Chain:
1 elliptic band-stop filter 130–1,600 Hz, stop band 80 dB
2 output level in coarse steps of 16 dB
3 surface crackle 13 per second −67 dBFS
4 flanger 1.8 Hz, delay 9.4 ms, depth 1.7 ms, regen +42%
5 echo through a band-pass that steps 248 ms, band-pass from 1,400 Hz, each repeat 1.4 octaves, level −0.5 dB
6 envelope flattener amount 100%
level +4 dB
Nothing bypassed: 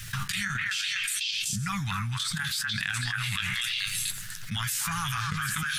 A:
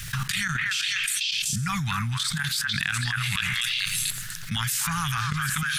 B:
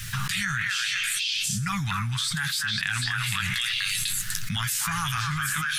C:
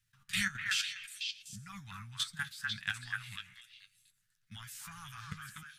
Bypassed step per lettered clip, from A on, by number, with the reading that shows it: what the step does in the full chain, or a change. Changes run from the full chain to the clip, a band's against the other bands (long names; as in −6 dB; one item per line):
4, change in integrated loudness +3.5 LU
2, change in integrated loudness +3.0 LU
6, change in crest factor +7.5 dB